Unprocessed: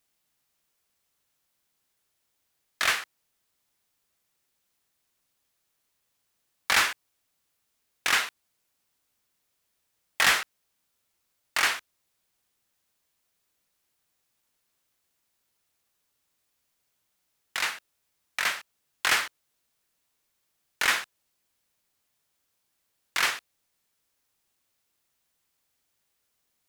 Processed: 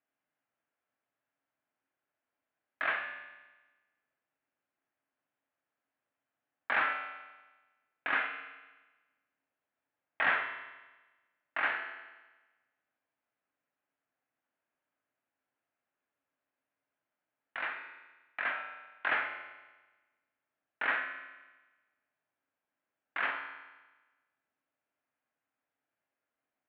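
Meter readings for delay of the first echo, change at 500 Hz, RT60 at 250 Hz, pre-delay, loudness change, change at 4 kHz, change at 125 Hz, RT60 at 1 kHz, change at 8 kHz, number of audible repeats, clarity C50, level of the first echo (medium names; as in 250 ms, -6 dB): no echo, -2.5 dB, 1.2 s, 3 ms, -8.5 dB, -18.0 dB, under -10 dB, 1.2 s, under -40 dB, no echo, 6.0 dB, no echo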